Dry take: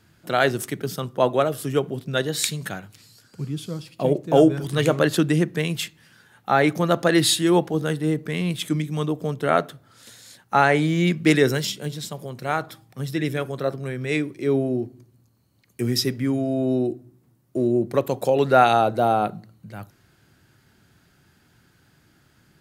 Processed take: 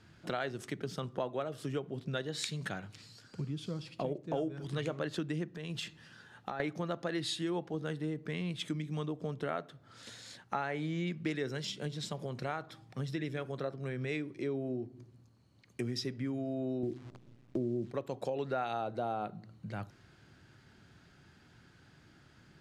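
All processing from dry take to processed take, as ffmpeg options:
ffmpeg -i in.wav -filter_complex "[0:a]asettb=1/sr,asplit=3[link_01][link_02][link_03];[link_01]atrim=end=5.484[link_04];[link_02]atrim=start=5.48:end=6.6,asetpts=PTS-STARTPTS,afade=type=in:duration=0.004:curve=qsin,afade=type=out:start_time=1.116:duration=0.004:curve=qsin,bandreject=frequency=2200:width=7.9,acompressor=threshold=-30dB:ratio=6:attack=3.2:release=140:knee=1:detection=peak[link_05];[link_03]atrim=start=6.596[link_06];[link_04][link_05]acrossfade=duration=0.004:curve1=hsin:curve2=qsin[link_07];[link_07][link_06]acrossfade=duration=0.004:curve1=qsin:curve2=hsin,asettb=1/sr,asplit=3[link_08][link_09][link_10];[link_08]atrim=end=16.834[link_11];[link_09]atrim=start=16.83:end=17.91,asetpts=PTS-STARTPTS,afade=type=in:duration=0.004:curve=qsin,afade=type=out:start_time=1.076:duration=0.004:curve=qsin,tiltshelf=frequency=670:gain=10,acrusher=bits=8:dc=4:mix=0:aa=0.000001[link_12];[link_10]atrim=start=17.906[link_13];[link_11][link_12]acrossfade=duration=0.004:curve1=hsin:curve2=qsin[link_14];[link_14][link_13]acrossfade=duration=0.004:curve1=qsin:curve2=hsin,lowpass=5900,acompressor=threshold=-34dB:ratio=4,volume=-1.5dB" out.wav

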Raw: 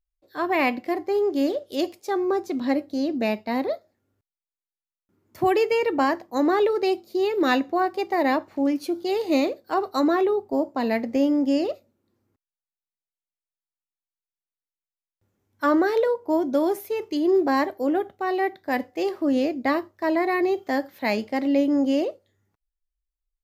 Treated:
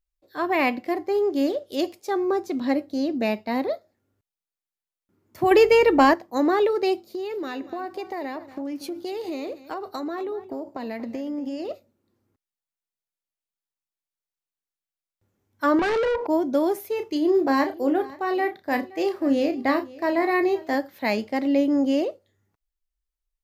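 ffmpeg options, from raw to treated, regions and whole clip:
ffmpeg -i in.wav -filter_complex "[0:a]asettb=1/sr,asplit=3[link_01][link_02][link_03];[link_01]atrim=end=5.514[link_04];[link_02]atrim=start=5.51:end=6.14,asetpts=PTS-STARTPTS,afade=type=in:duration=0.004:curve=qsin,afade=type=out:start_time=0.626:duration=0.004:curve=qsin,acontrast=56,aeval=exprs='val(0)+0.00562*(sin(2*PI*50*n/s)+sin(2*PI*2*50*n/s)/2+sin(2*PI*3*50*n/s)/3+sin(2*PI*4*50*n/s)/4+sin(2*PI*5*50*n/s)/5)':channel_layout=same[link_05];[link_03]atrim=start=6.136[link_06];[link_04][link_05]acrossfade=duration=0.004:curve1=hsin:curve2=qsin[link_07];[link_07][link_06]acrossfade=duration=0.004:curve1=qsin:curve2=hsin,asettb=1/sr,asplit=3[link_08][link_09][link_10];[link_08]atrim=end=7.054[link_11];[link_09]atrim=start=7.05:end=11.71,asetpts=PTS-STARTPTS,afade=type=in:duration=0.004:curve=qsin,afade=type=out:start_time=4.656:duration=0.004:curve=qsin,acompressor=threshold=-27dB:ratio=10:attack=3.2:release=140:knee=1:detection=peak,aecho=1:1:235:0.168,atrim=end_sample=205506[link_12];[link_10]atrim=start=11.706[link_13];[link_11][link_12]acrossfade=duration=0.004:curve1=hsin:curve2=qsin[link_14];[link_14][link_13]acrossfade=duration=0.004:curve1=qsin:curve2=hsin,asettb=1/sr,asplit=3[link_15][link_16][link_17];[link_15]atrim=end=15.794[link_18];[link_16]atrim=start=15.79:end=16.27,asetpts=PTS-STARTPTS,afade=type=in:duration=0.004:curve=qsin,afade=type=out:start_time=0.476:duration=0.004:curve=qsin,acompressor=threshold=-33dB:ratio=4:attack=3.2:release=140:knee=1:detection=peak,highpass=130,lowpass=4500,asplit=2[link_19][link_20];[link_20]highpass=frequency=720:poles=1,volume=32dB,asoftclip=type=tanh:threshold=-15.5dB[link_21];[link_19][link_21]amix=inputs=2:normalize=0,lowpass=frequency=3100:poles=1,volume=-6dB[link_22];[link_17]atrim=start=16.266[link_23];[link_18][link_22]acrossfade=duration=0.004:curve1=hsin:curve2=qsin[link_24];[link_24][link_23]acrossfade=duration=0.004:curve1=qsin:curve2=hsin,asettb=1/sr,asplit=3[link_25][link_26][link_27];[link_25]atrim=end=16.954[link_28];[link_26]atrim=start=16.95:end=20.75,asetpts=PTS-STARTPTS,afade=type=in:duration=0.004:curve=qsin,afade=type=out:start_time=3.796:duration=0.004:curve=qsin,asplit=2[link_29][link_30];[link_30]adelay=33,volume=-8.5dB[link_31];[link_29][link_31]amix=inputs=2:normalize=0,atrim=end_sample=167580,aecho=1:1:521:0.0944,atrim=end_sample=167580[link_32];[link_27]atrim=start=20.746[link_33];[link_28][link_32]acrossfade=duration=0.004:curve1=hsin:curve2=qsin[link_34];[link_34][link_33]acrossfade=duration=0.004:curve1=qsin:curve2=hsin" out.wav

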